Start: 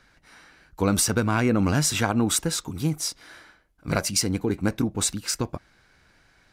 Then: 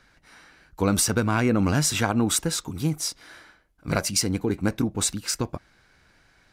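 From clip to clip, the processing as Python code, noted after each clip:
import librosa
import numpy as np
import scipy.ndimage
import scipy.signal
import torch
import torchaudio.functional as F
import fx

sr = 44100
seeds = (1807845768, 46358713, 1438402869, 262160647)

y = x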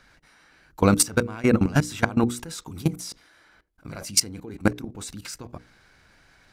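y = fx.level_steps(x, sr, step_db=21)
y = fx.hum_notches(y, sr, base_hz=60, count=8)
y = F.gain(torch.from_numpy(y), 6.0).numpy()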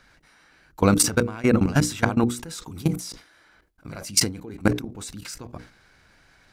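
y = fx.sustainer(x, sr, db_per_s=140.0)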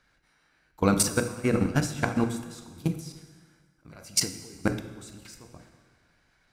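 y = fx.rev_plate(x, sr, seeds[0], rt60_s=1.6, hf_ratio=0.85, predelay_ms=0, drr_db=5.0)
y = fx.upward_expand(y, sr, threshold_db=-29.0, expansion=1.5)
y = F.gain(torch.from_numpy(y), -4.0).numpy()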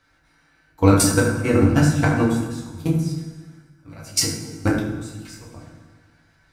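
y = fx.rev_fdn(x, sr, rt60_s=0.83, lf_ratio=1.35, hf_ratio=0.6, size_ms=61.0, drr_db=-3.5)
y = F.gain(torch.from_numpy(y), 1.5).numpy()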